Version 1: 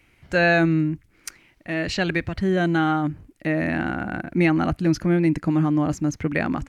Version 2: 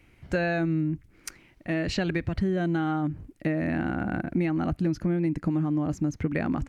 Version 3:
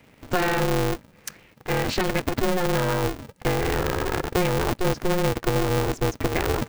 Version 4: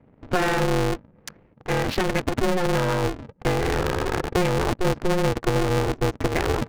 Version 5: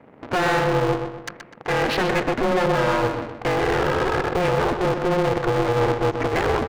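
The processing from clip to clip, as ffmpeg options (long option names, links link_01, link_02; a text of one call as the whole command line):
ffmpeg -i in.wav -af "tiltshelf=frequency=690:gain=3.5,acompressor=threshold=-23dB:ratio=6" out.wav
ffmpeg -i in.wav -af "aeval=exprs='val(0)*sgn(sin(2*PI*180*n/s))':channel_layout=same,volume=3.5dB" out.wav
ffmpeg -i in.wav -af "adynamicsmooth=sensitivity=5:basefreq=670,volume=1dB" out.wav
ffmpeg -i in.wav -filter_complex "[0:a]asplit=2[link_01][link_02];[link_02]highpass=frequency=720:poles=1,volume=26dB,asoftclip=type=tanh:threshold=-8dB[link_03];[link_01][link_03]amix=inputs=2:normalize=0,lowpass=frequency=3000:poles=1,volume=-6dB,asplit=2[link_04][link_05];[link_05]adelay=125,lowpass=frequency=4700:poles=1,volume=-7dB,asplit=2[link_06][link_07];[link_07]adelay=125,lowpass=frequency=4700:poles=1,volume=0.43,asplit=2[link_08][link_09];[link_09]adelay=125,lowpass=frequency=4700:poles=1,volume=0.43,asplit=2[link_10][link_11];[link_11]adelay=125,lowpass=frequency=4700:poles=1,volume=0.43,asplit=2[link_12][link_13];[link_13]adelay=125,lowpass=frequency=4700:poles=1,volume=0.43[link_14];[link_04][link_06][link_08][link_10][link_12][link_14]amix=inputs=6:normalize=0,volume=-5.5dB" out.wav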